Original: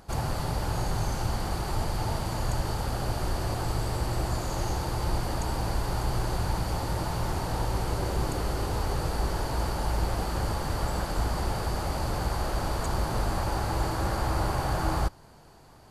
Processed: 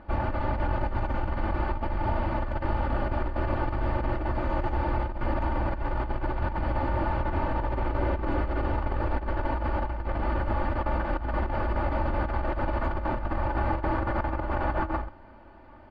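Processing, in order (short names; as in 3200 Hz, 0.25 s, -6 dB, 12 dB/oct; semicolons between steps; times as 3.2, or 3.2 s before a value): LPF 2500 Hz 24 dB/oct; comb 3.4 ms, depth 82%; negative-ratio compressor -26 dBFS, ratio -0.5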